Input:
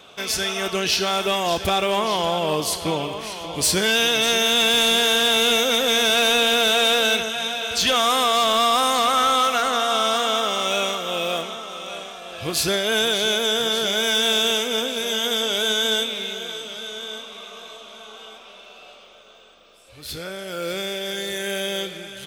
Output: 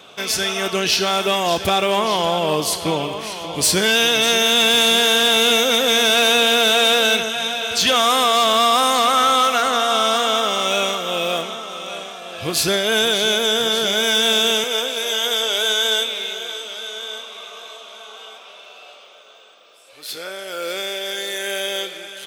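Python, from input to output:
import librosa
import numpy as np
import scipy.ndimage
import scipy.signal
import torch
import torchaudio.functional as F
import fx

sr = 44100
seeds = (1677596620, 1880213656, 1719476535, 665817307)

y = fx.highpass(x, sr, hz=fx.steps((0.0, 86.0), (14.64, 420.0)), slope=12)
y = y * 10.0 ** (3.0 / 20.0)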